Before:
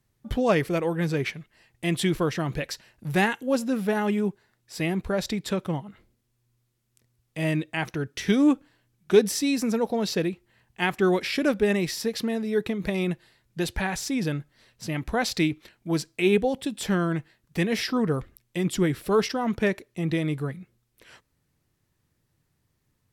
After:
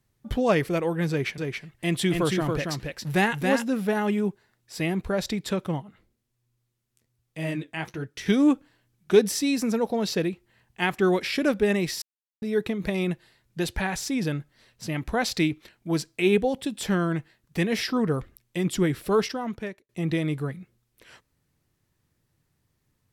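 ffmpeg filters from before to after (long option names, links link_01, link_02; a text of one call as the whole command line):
ffmpeg -i in.wav -filter_complex "[0:a]asettb=1/sr,asplit=3[link_01][link_02][link_03];[link_01]atrim=end=1.104[link_04];[link_02]atrim=start=1.1:end=3.65,asetpts=PTS-STARTPTS,afade=type=in:duration=0.004:curve=qsin,afade=type=out:start_time=2.546:duration=0.004:curve=qsin,aecho=1:1:277:0.631,atrim=end_sample=112455[link_05];[link_03]atrim=start=3.646[link_06];[link_04][link_05]acrossfade=duration=0.004:curve1=hsin:curve2=qsin[link_07];[link_07][link_06]acrossfade=duration=0.004:curve1=qsin:curve2=hsin,asettb=1/sr,asplit=3[link_08][link_09][link_10];[link_08]atrim=end=5.824[link_11];[link_09]atrim=start=5.82:end=8.26,asetpts=PTS-STARTPTS,afade=type=in:duration=0.004:curve=qsin,afade=type=out:start_time=2.436:duration=0.004:curve=qsin,flanger=delay=5.5:depth=8.6:regen=-50:speed=1.3:shape=triangular[link_12];[link_10]atrim=start=8.256[link_13];[link_11][link_12]acrossfade=duration=0.004:curve1=hsin:curve2=qsin[link_14];[link_14][link_13]acrossfade=duration=0.004:curve1=qsin:curve2=hsin,asplit=4[link_15][link_16][link_17][link_18];[link_15]atrim=end=12.02,asetpts=PTS-STARTPTS,afade=type=out:start_time=12.016:duration=0.004:curve=hsin[link_19];[link_16]atrim=start=12.02:end=12.42,asetpts=PTS-STARTPTS,volume=0[link_20];[link_17]atrim=start=12.42:end=19.89,asetpts=PTS-STARTPTS,afade=type=in:duration=0.004:curve=hsin,afade=type=out:start_time=6.71:duration=0.76[link_21];[link_18]atrim=start=19.89,asetpts=PTS-STARTPTS,afade=type=in:duration=0.004:curve=hsin[link_22];[link_19][link_20][link_21][link_22]concat=n=4:v=0:a=1" out.wav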